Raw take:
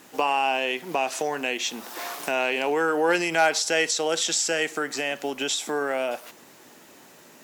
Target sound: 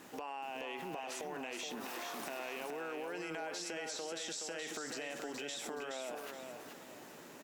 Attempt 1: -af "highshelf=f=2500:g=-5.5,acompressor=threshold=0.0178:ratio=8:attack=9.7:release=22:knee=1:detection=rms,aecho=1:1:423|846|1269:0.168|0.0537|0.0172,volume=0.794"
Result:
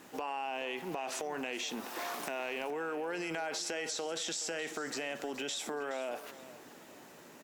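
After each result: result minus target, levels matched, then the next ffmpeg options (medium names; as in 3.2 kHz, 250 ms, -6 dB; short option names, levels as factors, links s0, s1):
echo-to-direct -10 dB; compression: peak gain reduction -5.5 dB
-af "highshelf=f=2500:g=-5.5,acompressor=threshold=0.0178:ratio=8:attack=9.7:release=22:knee=1:detection=rms,aecho=1:1:423|846|1269|1692:0.531|0.17|0.0544|0.0174,volume=0.794"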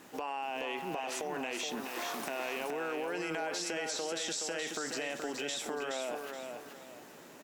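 compression: peak gain reduction -5.5 dB
-af "highshelf=f=2500:g=-5.5,acompressor=threshold=0.00841:ratio=8:attack=9.7:release=22:knee=1:detection=rms,aecho=1:1:423|846|1269|1692:0.531|0.17|0.0544|0.0174,volume=0.794"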